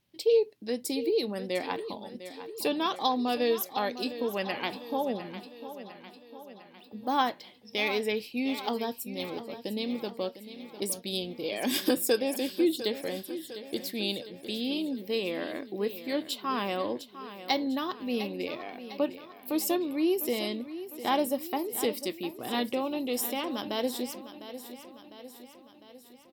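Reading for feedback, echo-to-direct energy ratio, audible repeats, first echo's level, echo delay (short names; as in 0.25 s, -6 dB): 57%, -11.5 dB, 5, -13.0 dB, 0.703 s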